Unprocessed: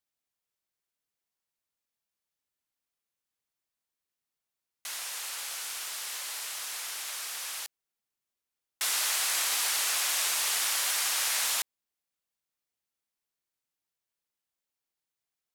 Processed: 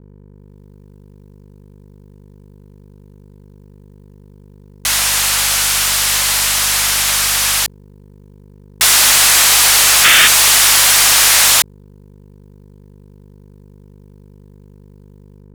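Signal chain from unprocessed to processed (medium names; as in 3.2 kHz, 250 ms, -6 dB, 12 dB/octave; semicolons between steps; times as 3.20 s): level rider gain up to 14 dB; painted sound noise, 10.04–10.28 s, 1.2–3.7 kHz -13 dBFS; hum 50 Hz, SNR 19 dB; waveshaping leveller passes 3; trim -2.5 dB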